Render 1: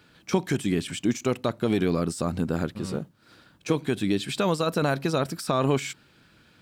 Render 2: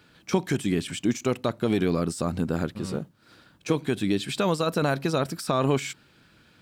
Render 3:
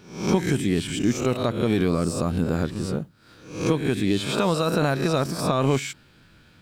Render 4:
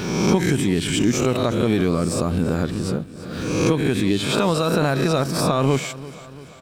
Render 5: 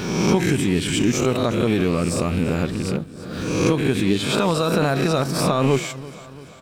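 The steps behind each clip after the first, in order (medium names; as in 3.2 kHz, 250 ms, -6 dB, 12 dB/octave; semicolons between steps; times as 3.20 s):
no audible change
reverse spectral sustain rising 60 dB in 0.54 s; bass shelf 84 Hz +11.5 dB
feedback delay 340 ms, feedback 57%, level -17.5 dB; swell ahead of each attack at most 39 dB/s; trim +2 dB
rattle on loud lows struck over -21 dBFS, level -23 dBFS; flange 0.71 Hz, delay 3.6 ms, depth 8.2 ms, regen +86%; trim +4.5 dB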